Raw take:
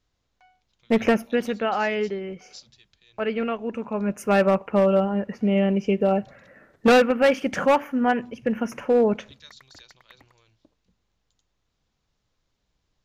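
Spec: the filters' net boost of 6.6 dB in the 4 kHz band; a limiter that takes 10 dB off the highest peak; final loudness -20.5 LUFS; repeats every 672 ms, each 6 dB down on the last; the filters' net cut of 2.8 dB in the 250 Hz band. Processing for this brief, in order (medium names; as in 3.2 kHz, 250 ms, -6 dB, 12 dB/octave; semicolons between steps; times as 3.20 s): peaking EQ 250 Hz -3.5 dB; peaking EQ 4 kHz +9 dB; peak limiter -15.5 dBFS; feedback delay 672 ms, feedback 50%, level -6 dB; trim +5.5 dB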